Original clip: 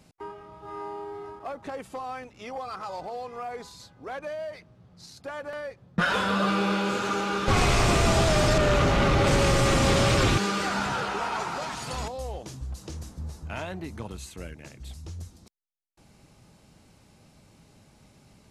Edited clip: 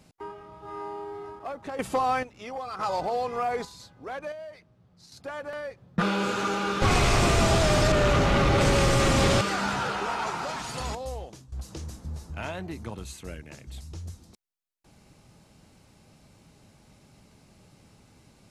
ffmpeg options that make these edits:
ffmpeg -i in.wav -filter_complex "[0:a]asplit=10[link_01][link_02][link_03][link_04][link_05][link_06][link_07][link_08][link_09][link_10];[link_01]atrim=end=1.792[link_11];[link_02]atrim=start=1.788:end=2.232,asetpts=PTS-STARTPTS,volume=10.5dB[link_12];[link_03]atrim=start=2.228:end=2.792[link_13];[link_04]atrim=start=2.788:end=3.652,asetpts=PTS-STARTPTS,volume=7.5dB[link_14];[link_05]atrim=start=3.648:end=4.322[link_15];[link_06]atrim=start=4.318:end=5.122,asetpts=PTS-STARTPTS,volume=-6dB[link_16];[link_07]atrim=start=5.118:end=6.022[link_17];[link_08]atrim=start=6.678:end=10.072[link_18];[link_09]atrim=start=10.538:end=12.65,asetpts=PTS-STARTPTS,afade=type=out:start_time=1.692:duration=0.42:silence=0.125893[link_19];[link_10]atrim=start=12.65,asetpts=PTS-STARTPTS,afade=type=in:duration=0.004:curve=hsin:silence=0.125893[link_20];[link_11][link_12]acrossfade=duration=0.004:curve1=hsin:curve2=hsin[link_21];[link_21][link_13]acrossfade=duration=0.004:curve1=hsin:curve2=hsin[link_22];[link_22][link_14]acrossfade=duration=0.004:curve1=hsin:curve2=hsin[link_23];[link_23][link_15]acrossfade=duration=0.004:curve1=hsin:curve2=hsin[link_24];[link_24][link_16]acrossfade=duration=0.004:curve1=hsin:curve2=hsin[link_25];[link_25][link_17]acrossfade=duration=0.004:curve1=hsin:curve2=hsin[link_26];[link_26][link_18]acrossfade=duration=0.004:curve1=hsin:curve2=hsin[link_27];[link_19][link_20]concat=n=2:v=0:a=1[link_28];[link_27][link_28]acrossfade=duration=0.004:curve1=hsin:curve2=hsin" out.wav

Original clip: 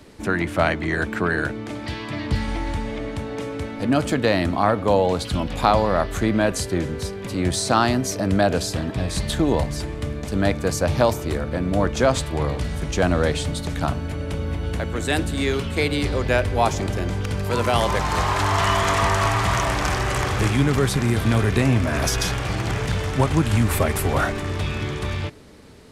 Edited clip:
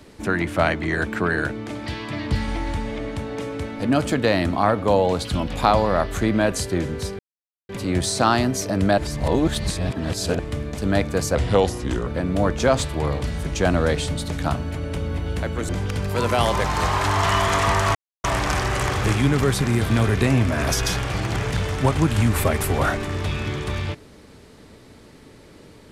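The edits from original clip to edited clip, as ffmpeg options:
ffmpeg -i in.wav -filter_complex "[0:a]asplit=9[link_01][link_02][link_03][link_04][link_05][link_06][link_07][link_08][link_09];[link_01]atrim=end=7.19,asetpts=PTS-STARTPTS,afade=type=out:start_time=7.186:duration=0.004:curve=hsin,apad=pad_dur=0.5[link_10];[link_02]atrim=start=7.19:end=8.482,asetpts=PTS-STARTPTS,afade=type=in:duration=0.004:curve=hsin[link_11];[link_03]atrim=start=8.478:end=9.892,asetpts=PTS-STARTPTS,areverse[link_12];[link_04]atrim=start=9.888:end=10.854[link_13];[link_05]atrim=start=10.85:end=11.44,asetpts=PTS-STARTPTS,asetrate=36162,aresample=44100,atrim=end_sample=31730,asetpts=PTS-STARTPTS[link_14];[link_06]atrim=start=11.436:end=15.062[link_15];[link_07]atrim=start=17.038:end=19.3,asetpts=PTS-STARTPTS,afade=type=out:start_time=2.258:duration=0.004:curve=hsin[link_16];[link_08]atrim=start=19.3:end=19.59,asetpts=PTS-STARTPTS,volume=0[link_17];[link_09]atrim=start=19.59,asetpts=PTS-STARTPTS,afade=type=in:duration=0.004:curve=hsin[link_18];[link_10][link_11]concat=n=2:v=0:a=1[link_19];[link_19][link_12]acrossfade=duration=0.004:curve1=hsin:curve2=hsin[link_20];[link_20][link_13]acrossfade=duration=0.004:curve1=hsin:curve2=hsin[link_21];[link_21][link_14]acrossfade=duration=0.004:curve1=hsin:curve2=hsin[link_22];[link_22][link_15]acrossfade=duration=0.004:curve1=hsin:curve2=hsin[link_23];[link_16][link_17][link_18]concat=n=3:v=0:a=1[link_24];[link_23][link_24]acrossfade=duration=0.004:curve1=hsin:curve2=hsin" out.wav

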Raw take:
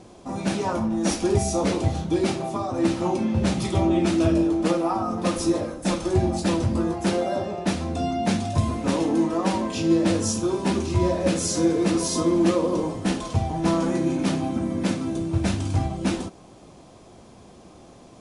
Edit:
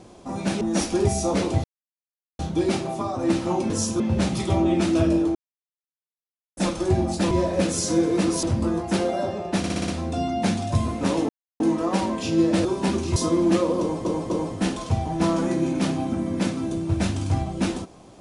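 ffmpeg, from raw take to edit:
ffmpeg -i in.wav -filter_complex "[0:a]asplit=19[link_01][link_02][link_03][link_04][link_05][link_06][link_07][link_08][link_09][link_10][link_11][link_12][link_13][link_14][link_15][link_16][link_17][link_18][link_19];[link_01]atrim=end=0.612[link_20];[link_02]atrim=start=0.908:end=1.94,asetpts=PTS-STARTPTS,afade=type=out:start_time=1.028:duration=0.004:curve=hsin,apad=pad_dur=0.75[link_21];[link_03]atrim=start=1.94:end=3.252,asetpts=PTS-STARTPTS,afade=type=in:duration=0.004:curve=hsin[link_22];[link_04]atrim=start=10.168:end=10.472[link_23];[link_05]atrim=start=3.248:end=4.6,asetpts=PTS-STARTPTS,afade=type=out:start_time=1.348:duration=0.004:curve=hsin[link_24];[link_06]atrim=start=4.6:end=5.82,asetpts=PTS-STARTPTS,volume=0[link_25];[link_07]atrim=start=5.82:end=6.562,asetpts=PTS-STARTPTS,afade=type=in:duration=0.004:curve=hsin[link_26];[link_08]atrim=start=10.978:end=12.102[link_27];[link_09]atrim=start=6.558:end=7.772[link_28];[link_10]atrim=start=7.708:end=7.772[link_29];[link_11]atrim=start=7.708:end=7.772[link_30];[link_12]atrim=start=7.708:end=7.772[link_31];[link_13]atrim=start=7.708:end=7.772[link_32];[link_14]atrim=start=7.708:end=9.12,asetpts=PTS-STARTPTS,afade=type=out:start_time=1.408:duration=0.004:curve=hsin,apad=pad_dur=0.31[link_33];[link_15]atrim=start=9.12:end=10.172,asetpts=PTS-STARTPTS,afade=type=in:duration=0.004:curve=hsin[link_34];[link_16]atrim=start=10.468:end=10.982[link_35];[link_17]atrim=start=12.098:end=12.992[link_36];[link_18]atrim=start=12.738:end=12.992[link_37];[link_19]atrim=start=12.738[link_38];[link_21][link_22]concat=n=2:v=0:a=1[link_39];[link_20][link_39]acrossfade=duration=0.004:curve1=hsin:curve2=hsin[link_40];[link_40][link_23]acrossfade=duration=0.004:curve1=hsin:curve2=hsin[link_41];[link_24][link_25][link_26]concat=n=3:v=0:a=1[link_42];[link_41][link_42]acrossfade=duration=0.004:curve1=hsin:curve2=hsin[link_43];[link_43][link_27]acrossfade=duration=0.004:curve1=hsin:curve2=hsin[link_44];[link_44][link_28]acrossfade=duration=0.004:curve1=hsin:curve2=hsin[link_45];[link_45][link_29]acrossfade=duration=0.004:curve1=hsin:curve2=hsin[link_46];[link_46][link_30]acrossfade=duration=0.004:curve1=hsin:curve2=hsin[link_47];[link_47][link_31]acrossfade=duration=0.004:curve1=hsin:curve2=hsin[link_48];[link_48][link_32]acrossfade=duration=0.004:curve1=hsin:curve2=hsin[link_49];[link_33][link_34]concat=n=2:v=0:a=1[link_50];[link_49][link_50]acrossfade=duration=0.004:curve1=hsin:curve2=hsin[link_51];[link_51][link_35]acrossfade=duration=0.004:curve1=hsin:curve2=hsin[link_52];[link_52][link_36]acrossfade=duration=0.004:curve1=hsin:curve2=hsin[link_53];[link_53][link_37]acrossfade=duration=0.004:curve1=hsin:curve2=hsin[link_54];[link_54][link_38]acrossfade=duration=0.004:curve1=hsin:curve2=hsin" out.wav

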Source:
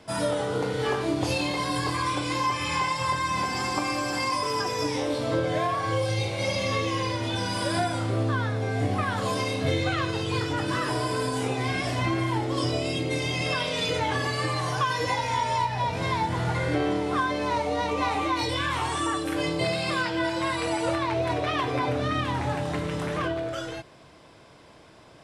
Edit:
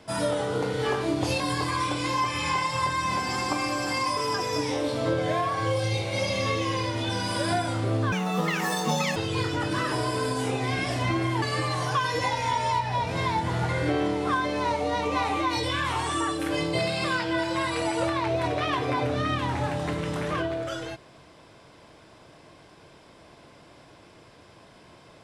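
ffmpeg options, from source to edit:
ffmpeg -i in.wav -filter_complex "[0:a]asplit=5[link_01][link_02][link_03][link_04][link_05];[link_01]atrim=end=1.402[link_06];[link_02]atrim=start=1.658:end=8.384[link_07];[link_03]atrim=start=8.38:end=10.13,asetpts=PTS-STARTPTS,asetrate=74088,aresample=44100[link_08];[link_04]atrim=start=10.126:end=12.392[link_09];[link_05]atrim=start=14.278[link_10];[link_06][link_07]acrossfade=duration=0.004:curve1=hsin:curve2=hsin[link_11];[link_11][link_08]acrossfade=duration=0.004:curve1=hsin:curve2=hsin[link_12];[link_12][link_09]acrossfade=duration=0.004:curve1=hsin:curve2=hsin[link_13];[link_13][link_10]acrossfade=duration=0.004:curve1=hsin:curve2=hsin" out.wav

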